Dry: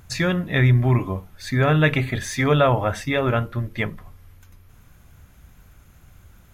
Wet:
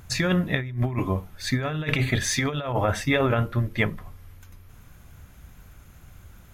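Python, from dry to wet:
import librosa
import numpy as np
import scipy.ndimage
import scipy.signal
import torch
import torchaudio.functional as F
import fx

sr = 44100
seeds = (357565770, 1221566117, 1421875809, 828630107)

y = fx.dynamic_eq(x, sr, hz=4700.0, q=0.75, threshold_db=-37.0, ratio=4.0, max_db=5, at=(0.67, 2.73))
y = fx.over_compress(y, sr, threshold_db=-21.0, ratio=-0.5)
y = F.gain(torch.from_numpy(y), -1.5).numpy()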